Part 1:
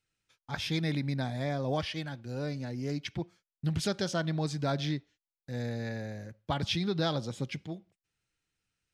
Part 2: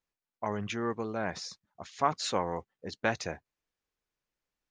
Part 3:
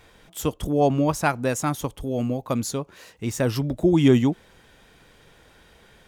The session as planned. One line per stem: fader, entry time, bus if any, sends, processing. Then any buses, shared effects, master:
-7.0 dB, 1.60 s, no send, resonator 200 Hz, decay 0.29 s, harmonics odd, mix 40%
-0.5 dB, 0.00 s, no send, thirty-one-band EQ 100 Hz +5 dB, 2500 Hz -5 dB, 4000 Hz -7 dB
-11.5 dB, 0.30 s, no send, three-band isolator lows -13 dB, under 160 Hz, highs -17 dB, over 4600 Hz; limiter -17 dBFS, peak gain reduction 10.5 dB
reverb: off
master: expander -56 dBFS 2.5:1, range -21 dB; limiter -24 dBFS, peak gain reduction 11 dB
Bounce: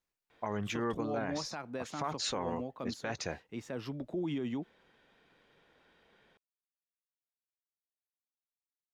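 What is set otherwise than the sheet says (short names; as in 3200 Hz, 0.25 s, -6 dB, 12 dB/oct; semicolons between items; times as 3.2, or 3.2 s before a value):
stem 1: muted; stem 2: missing thirty-one-band EQ 100 Hz +5 dB, 2500 Hz -5 dB, 4000 Hz -7 dB; master: missing expander -56 dBFS 2.5:1, range -21 dB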